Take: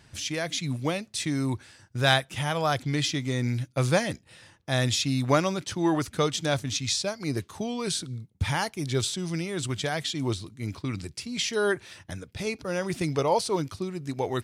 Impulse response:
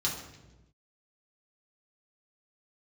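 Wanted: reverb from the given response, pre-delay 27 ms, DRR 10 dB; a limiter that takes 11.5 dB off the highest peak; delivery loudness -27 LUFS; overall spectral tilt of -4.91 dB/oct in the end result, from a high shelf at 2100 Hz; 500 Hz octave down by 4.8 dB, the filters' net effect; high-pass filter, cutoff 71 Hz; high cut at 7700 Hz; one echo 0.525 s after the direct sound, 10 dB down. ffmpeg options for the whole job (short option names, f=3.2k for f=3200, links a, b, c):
-filter_complex "[0:a]highpass=71,lowpass=7.7k,equalizer=f=500:t=o:g=-6,highshelf=f=2.1k:g=-3,alimiter=limit=-20dB:level=0:latency=1,aecho=1:1:525:0.316,asplit=2[a][b];[1:a]atrim=start_sample=2205,adelay=27[c];[b][c]afir=irnorm=-1:irlink=0,volume=-16dB[d];[a][d]amix=inputs=2:normalize=0,volume=3.5dB"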